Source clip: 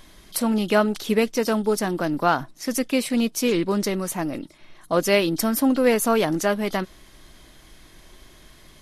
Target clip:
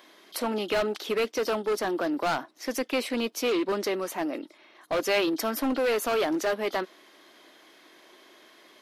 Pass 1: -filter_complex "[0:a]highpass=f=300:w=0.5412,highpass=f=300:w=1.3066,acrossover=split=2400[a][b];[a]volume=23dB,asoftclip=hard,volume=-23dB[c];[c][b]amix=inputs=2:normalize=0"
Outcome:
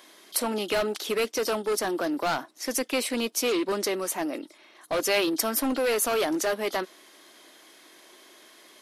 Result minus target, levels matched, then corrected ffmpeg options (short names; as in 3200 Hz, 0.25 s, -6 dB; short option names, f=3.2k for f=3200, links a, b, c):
8000 Hz band +7.5 dB
-filter_complex "[0:a]highpass=f=300:w=0.5412,highpass=f=300:w=1.3066,equalizer=f=9.3k:t=o:w=1.3:g=-11.5,acrossover=split=2400[a][b];[a]volume=23dB,asoftclip=hard,volume=-23dB[c];[c][b]amix=inputs=2:normalize=0"